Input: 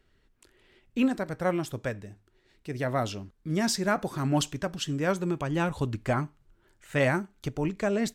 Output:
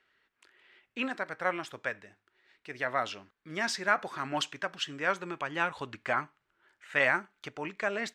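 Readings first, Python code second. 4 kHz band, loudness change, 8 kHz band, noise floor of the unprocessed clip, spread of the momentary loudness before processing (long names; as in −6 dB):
−1.0 dB, −3.0 dB, −7.5 dB, −67 dBFS, 10 LU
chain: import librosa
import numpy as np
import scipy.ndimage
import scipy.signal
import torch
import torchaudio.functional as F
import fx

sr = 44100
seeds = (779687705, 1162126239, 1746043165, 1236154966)

y = fx.bandpass_q(x, sr, hz=1800.0, q=1.0)
y = F.gain(torch.from_numpy(y), 4.5).numpy()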